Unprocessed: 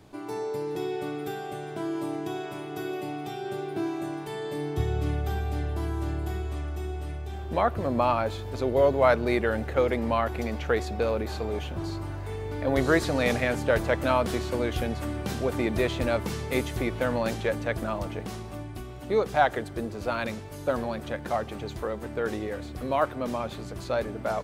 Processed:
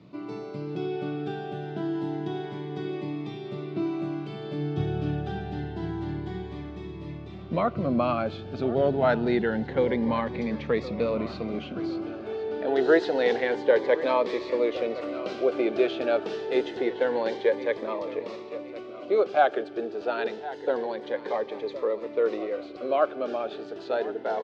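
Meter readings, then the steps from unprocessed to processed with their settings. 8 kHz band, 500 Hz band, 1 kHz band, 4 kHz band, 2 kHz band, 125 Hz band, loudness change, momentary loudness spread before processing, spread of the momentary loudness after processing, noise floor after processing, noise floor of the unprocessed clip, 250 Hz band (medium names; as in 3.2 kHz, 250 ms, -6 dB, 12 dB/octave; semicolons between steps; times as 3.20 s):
under -15 dB, +2.0 dB, -1.5 dB, -2.0 dB, -2.0 dB, -4.0 dB, +0.5 dB, 10 LU, 12 LU, -40 dBFS, -39 dBFS, +1.0 dB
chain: low-pass 4.4 kHz 24 dB/octave; high-pass sweep 160 Hz -> 420 Hz, 11.39–12.39 s; on a send: feedback delay 1065 ms, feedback 38%, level -15.5 dB; on the sum: Shepard-style phaser rising 0.27 Hz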